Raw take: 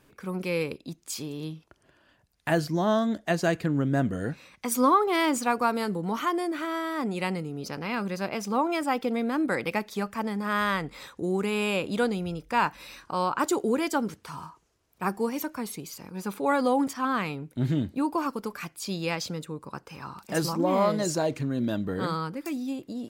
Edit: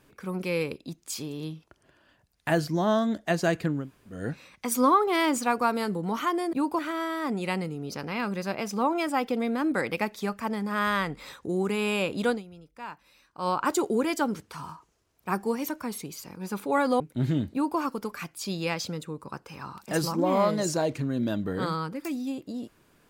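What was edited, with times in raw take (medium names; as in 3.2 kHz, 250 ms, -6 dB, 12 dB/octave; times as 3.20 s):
3.79–4.17 s: room tone, crossfade 0.24 s
12.04–13.22 s: dip -15.5 dB, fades 0.13 s
16.74–17.41 s: delete
17.94–18.20 s: copy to 6.53 s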